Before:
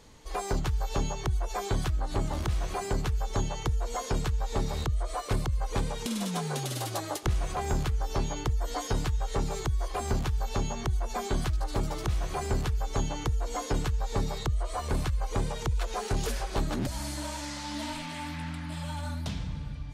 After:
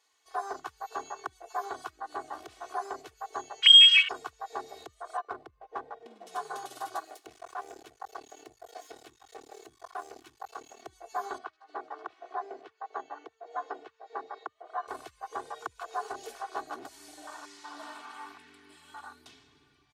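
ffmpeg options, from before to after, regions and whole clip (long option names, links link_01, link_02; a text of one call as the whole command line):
ffmpeg -i in.wav -filter_complex "[0:a]asettb=1/sr,asplit=3[link_01][link_02][link_03];[link_01]atrim=end=3.624[link_04];[link_02]atrim=start=3.62:end=4.09,asetpts=PTS-STARTPTS,afade=type=in:duration=0.004:curve=qsin,afade=type=out:start_time=0.466:duration=0.004:curve=qsin,tiltshelf=frequency=1300:gain=4,lowpass=frequency=2800:width_type=q:width=0.5098,lowpass=frequency=2800:width_type=q:width=0.6013,lowpass=frequency=2800:width_type=q:width=0.9,lowpass=frequency=2800:width_type=q:width=2.563,afreqshift=-3300,acontrast=27[link_05];[link_03]atrim=start=4.086[link_06];[link_04][link_05]acrossfade=duration=0.004:curve1=hsin:curve2=qsin[link_07];[link_07][link_06]acrossfade=duration=0.004:curve1=qsin:curve2=hsin,asettb=1/sr,asplit=3[link_08][link_09][link_10];[link_08]atrim=end=5.174[link_11];[link_09]atrim=start=5.17:end=6.27,asetpts=PTS-STARTPTS,afade=type=in:duration=0.004:curve=qsin,afade=type=out:start_time=1.096:duration=0.004:curve=qsin,highshelf=frequency=3800:gain=9.5,adynamicsmooth=sensitivity=1.5:basefreq=680[link_12];[link_10]atrim=start=6.266[link_13];[link_11][link_12]acrossfade=duration=0.004:curve1=hsin:curve2=qsin[link_14];[link_14][link_13]acrossfade=duration=0.004:curve1=qsin:curve2=hsin,asettb=1/sr,asplit=3[link_15][link_16][link_17];[link_15]atrim=end=6.994[link_18];[link_16]atrim=start=6.99:end=10.86,asetpts=PTS-STARTPTS,afade=type=in:duration=0.004:curve=qsin,afade=type=out:start_time=3.866:duration=0.004:curve=qsin,bandreject=frequency=50:width_type=h:width=6,bandreject=frequency=100:width_type=h:width=6,bandreject=frequency=150:width_type=h:width=6,bandreject=frequency=200:width_type=h:width=6,bandreject=frequency=250:width_type=h:width=6,bandreject=frequency=300:width_type=h:width=6,bandreject=frequency=350:width_type=h:width=6,aeval=exprs='max(val(0),0)':channel_layout=same[link_19];[link_17]atrim=start=10.856[link_20];[link_18][link_19]acrossfade=duration=0.004:curve1=hsin:curve2=qsin[link_21];[link_21][link_20]acrossfade=duration=0.004:curve1=qsin:curve2=hsin,asettb=1/sr,asplit=3[link_22][link_23][link_24];[link_22]atrim=end=11.384[link_25];[link_23]atrim=start=11.38:end=14.88,asetpts=PTS-STARTPTS,afade=type=in:duration=0.004:curve=qsin,afade=type=out:start_time=3.496:duration=0.004:curve=qsin,highpass=300,lowpass=3700,highshelf=frequency=2500:gain=-8.5[link_26];[link_24]atrim=start=14.876[link_27];[link_25][link_26]acrossfade=duration=0.004:curve1=hsin:curve2=qsin[link_28];[link_28][link_27]acrossfade=duration=0.004:curve1=qsin:curve2=hsin,afwtdn=0.02,highpass=930,aecho=1:1:2.7:0.75,volume=2.5dB" out.wav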